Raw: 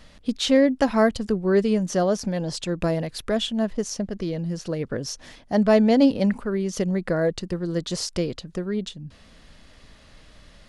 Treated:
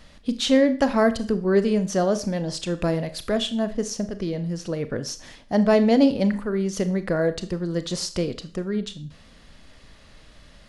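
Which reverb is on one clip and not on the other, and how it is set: Schroeder reverb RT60 0.41 s, combs from 27 ms, DRR 11 dB

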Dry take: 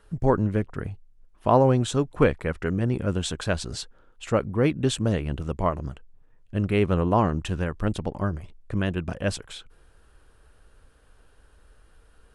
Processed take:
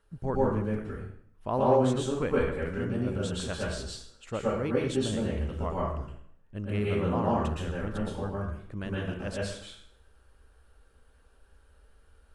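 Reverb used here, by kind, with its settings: plate-style reverb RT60 0.65 s, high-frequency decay 0.85×, pre-delay 0.105 s, DRR -5.5 dB; gain -11.5 dB

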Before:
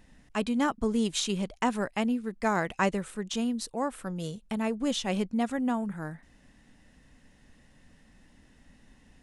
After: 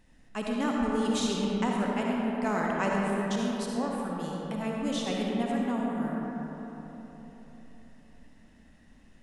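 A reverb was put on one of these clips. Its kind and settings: digital reverb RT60 4 s, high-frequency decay 0.4×, pre-delay 25 ms, DRR -3 dB; gain -5 dB

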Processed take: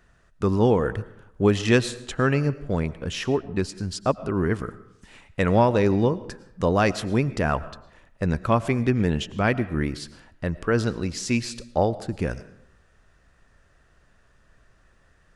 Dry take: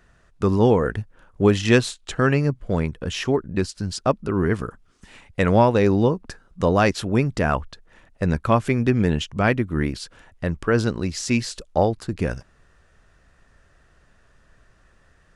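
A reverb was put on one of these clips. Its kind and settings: digital reverb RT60 0.79 s, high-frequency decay 0.6×, pre-delay 70 ms, DRR 16.5 dB; gain -2.5 dB

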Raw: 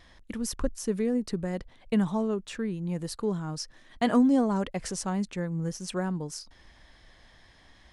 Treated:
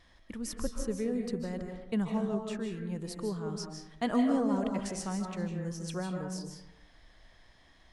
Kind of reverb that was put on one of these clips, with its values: digital reverb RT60 0.86 s, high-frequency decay 0.45×, pre-delay 0.115 s, DRR 3 dB; gain -6 dB

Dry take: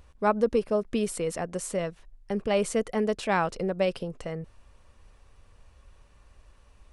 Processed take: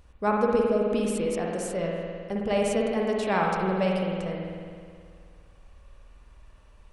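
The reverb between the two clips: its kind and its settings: spring tank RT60 2.1 s, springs 53 ms, chirp 30 ms, DRR -1.5 dB; gain -2 dB

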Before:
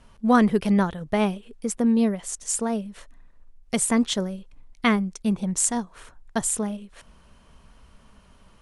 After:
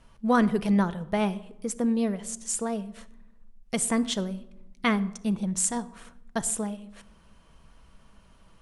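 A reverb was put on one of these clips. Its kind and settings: shoebox room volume 3100 m³, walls furnished, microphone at 0.68 m; gain -3.5 dB

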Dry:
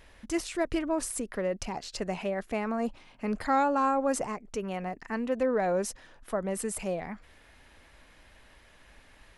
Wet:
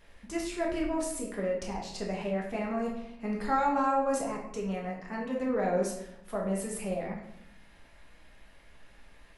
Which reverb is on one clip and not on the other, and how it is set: shoebox room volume 180 m³, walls mixed, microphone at 1.3 m; gain -6.5 dB

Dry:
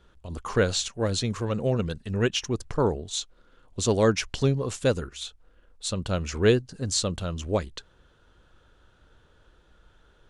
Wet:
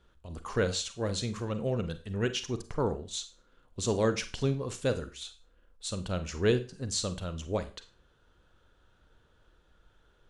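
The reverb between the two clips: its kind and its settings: Schroeder reverb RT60 0.34 s, combs from 33 ms, DRR 10.5 dB; gain -6 dB

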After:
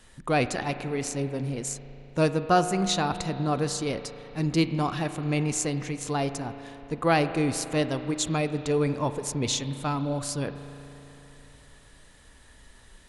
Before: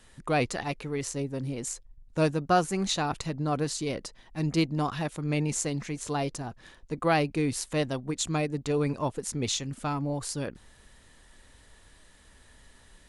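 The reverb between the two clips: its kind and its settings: spring tank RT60 3.5 s, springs 36 ms, chirp 20 ms, DRR 10 dB; gain +2 dB

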